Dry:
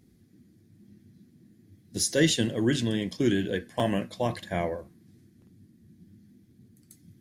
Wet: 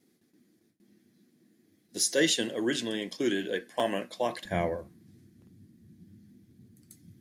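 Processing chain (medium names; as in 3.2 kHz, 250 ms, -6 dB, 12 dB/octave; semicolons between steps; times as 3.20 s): high-pass 340 Hz 12 dB/octave, from 4.45 s 43 Hz; gate with hold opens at -58 dBFS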